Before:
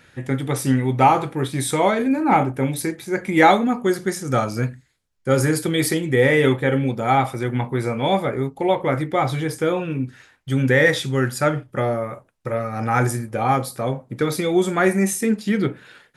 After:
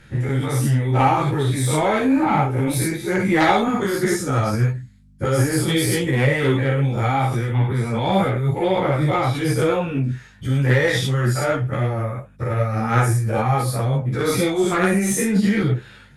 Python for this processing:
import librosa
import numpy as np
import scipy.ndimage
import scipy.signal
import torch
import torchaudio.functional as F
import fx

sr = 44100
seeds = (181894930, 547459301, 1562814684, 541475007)

p1 = fx.spec_dilate(x, sr, span_ms=120)
p2 = fx.peak_eq(p1, sr, hz=120.0, db=15.0, octaves=0.52)
p3 = fx.over_compress(p2, sr, threshold_db=-15.0, ratio=-0.5)
p4 = p2 + (p3 * 10.0 ** (-3.0 / 20.0))
p5 = fx.cheby_harmonics(p4, sr, harmonics=(3,), levels_db=(-15,), full_scale_db=5.5)
p6 = fx.add_hum(p5, sr, base_hz=50, snr_db=30)
p7 = fx.ensemble(p6, sr)
y = p7 * 10.0 ** (-1.0 / 20.0)